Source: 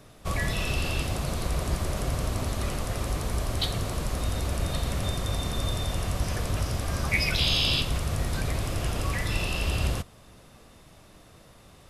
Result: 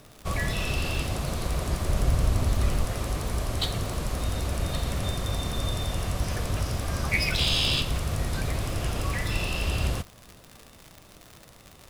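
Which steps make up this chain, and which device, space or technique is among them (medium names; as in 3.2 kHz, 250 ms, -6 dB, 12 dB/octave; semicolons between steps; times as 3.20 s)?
1.89–2.86 s: bass shelf 120 Hz +8.5 dB; record under a worn stylus (tracing distortion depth 0.023 ms; crackle 120 per s -33 dBFS; white noise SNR 40 dB)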